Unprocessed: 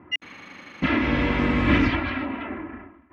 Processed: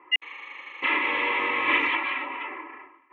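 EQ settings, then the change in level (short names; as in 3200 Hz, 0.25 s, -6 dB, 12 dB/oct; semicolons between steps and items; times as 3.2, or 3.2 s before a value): BPF 730–4000 Hz; fixed phaser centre 1000 Hz, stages 8; +5.5 dB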